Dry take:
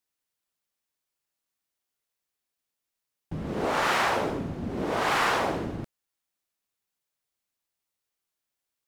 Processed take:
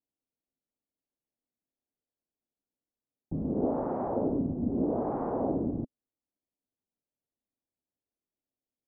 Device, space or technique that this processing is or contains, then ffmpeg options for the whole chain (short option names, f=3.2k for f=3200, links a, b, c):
under water: -af "lowpass=f=700:w=0.5412,lowpass=f=700:w=1.3066,equalizer=f=260:t=o:w=0.53:g=8.5,volume=-1.5dB"